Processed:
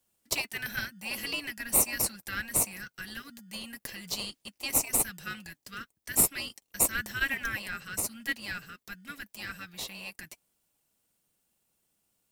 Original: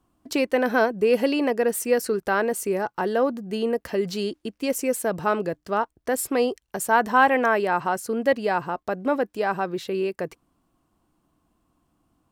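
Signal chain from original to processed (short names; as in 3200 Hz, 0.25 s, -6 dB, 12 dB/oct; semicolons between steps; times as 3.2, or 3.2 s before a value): inverse Chebyshev band-stop 420–880 Hz, stop band 50 dB; tilt +4.5 dB/oct; notch comb 260 Hz; in parallel at -9.5 dB: sample-and-hold 27×; on the sum: gain -7 dB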